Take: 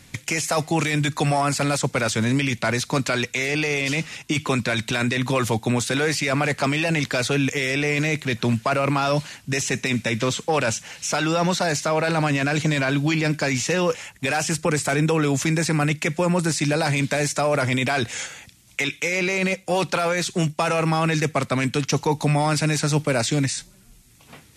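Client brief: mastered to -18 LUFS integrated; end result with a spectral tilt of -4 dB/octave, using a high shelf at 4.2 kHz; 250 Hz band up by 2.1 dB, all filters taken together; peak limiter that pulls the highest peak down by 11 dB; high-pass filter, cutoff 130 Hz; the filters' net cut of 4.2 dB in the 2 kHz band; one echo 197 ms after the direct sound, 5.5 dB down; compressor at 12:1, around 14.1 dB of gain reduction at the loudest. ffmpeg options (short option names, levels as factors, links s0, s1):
-af "highpass=130,equalizer=f=250:t=o:g=3.5,equalizer=f=2000:t=o:g=-6.5,highshelf=f=4200:g=4.5,acompressor=threshold=0.0282:ratio=12,alimiter=level_in=1.41:limit=0.0631:level=0:latency=1,volume=0.708,aecho=1:1:197:0.531,volume=7.08"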